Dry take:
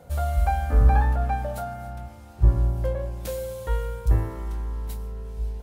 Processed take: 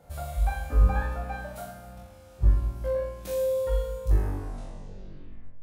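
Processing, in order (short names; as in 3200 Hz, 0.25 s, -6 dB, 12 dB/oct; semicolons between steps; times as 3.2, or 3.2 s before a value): tape stop at the end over 1.50 s; flutter echo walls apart 3.6 m, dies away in 0.75 s; gain -7 dB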